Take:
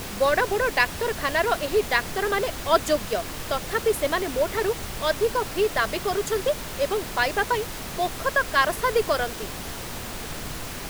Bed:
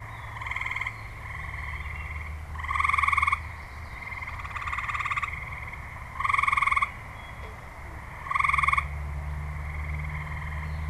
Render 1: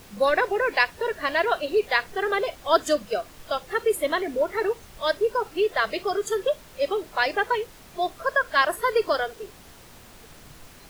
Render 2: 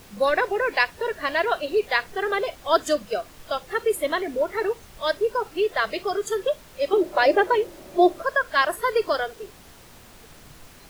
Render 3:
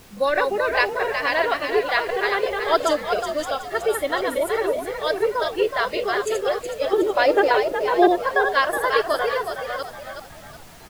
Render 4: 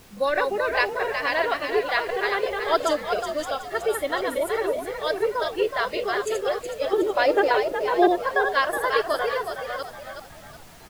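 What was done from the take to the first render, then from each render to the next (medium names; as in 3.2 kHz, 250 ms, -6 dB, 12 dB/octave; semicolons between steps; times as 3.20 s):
noise print and reduce 14 dB
6.93–8.22 s: small resonant body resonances 350/570 Hz, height 17 dB
chunks repeated in reverse 351 ms, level -4 dB; frequency-shifting echo 370 ms, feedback 40%, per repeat +58 Hz, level -7 dB
trim -2.5 dB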